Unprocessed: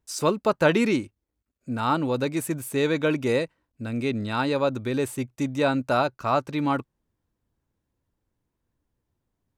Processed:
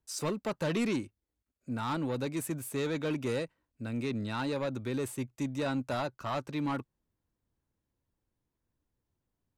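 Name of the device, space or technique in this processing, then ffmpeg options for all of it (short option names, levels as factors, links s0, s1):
one-band saturation: -filter_complex "[0:a]acrossover=split=210|4100[s0][s1][s2];[s1]asoftclip=type=tanh:threshold=0.0631[s3];[s0][s3][s2]amix=inputs=3:normalize=0,volume=0.531"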